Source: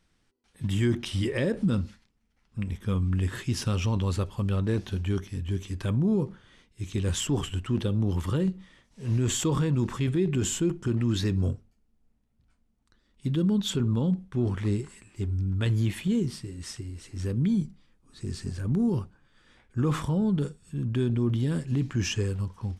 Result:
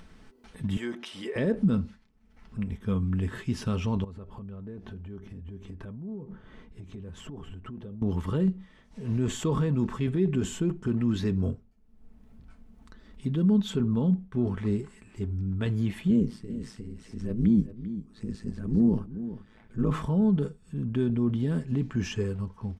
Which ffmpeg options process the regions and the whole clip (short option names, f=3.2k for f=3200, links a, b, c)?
-filter_complex "[0:a]asettb=1/sr,asplit=3[a][b][c];[a]atrim=end=0.774[d];[b]atrim=start=0.77:end=1.36,asetpts=PTS-STARTPTS,afade=t=in:d=0.004:c=qsin,afade=t=out:st=0.586:d=0.004:c=qsin,highpass=450,acompressor=mode=upward:threshold=-35dB:ratio=2.5:attack=3.2:release=140:knee=2.83:detection=peak[e];[c]atrim=start=1.356[f];[d][e]acrossfade=d=0.004:c1=hsin:c2=qsin[g];[g][f]acrossfade=d=0.004:c1=qsin:c2=hsin,asettb=1/sr,asplit=3[h][i][j];[h]atrim=end=4.044[k];[i]atrim=start=4.04:end=8.02,asetpts=PTS-STARTPTS,afade=t=in:d=0.004:c=qsin,afade=t=out:st=3.976:d=0.004:c=qsin,highshelf=f=2.2k:g=-12,acompressor=threshold=-37dB:ratio=10:attack=3.2:release=140:knee=1:detection=peak[l];[j]atrim=start=8.016[m];[k][l]acrossfade=d=0.004:c1=hsin:c2=qsin[n];[n][m]acrossfade=d=0.004:c1=qsin:c2=hsin,asettb=1/sr,asplit=3[o][p][q];[o]atrim=end=16.104[r];[p]atrim=start=16.1:end=19.91,asetpts=PTS-STARTPTS,afade=t=in:d=0.004:c=qsin,afade=t=out:st=3.806:d=0.004:c=qsin,equalizer=f=210:t=o:w=1:g=6,tremolo=f=110:d=0.857,aecho=1:1:396:0.224,atrim=end_sample=168021[s];[q]atrim=start=19.906[t];[r][s]acrossfade=d=0.004:c1=hsin:c2=qsin[u];[u][t]acrossfade=d=0.004:c1=qsin:c2=hsin,acompressor=mode=upward:threshold=-36dB:ratio=2.5,highshelf=f=2.8k:g=-11.5,aecho=1:1:4.6:0.38"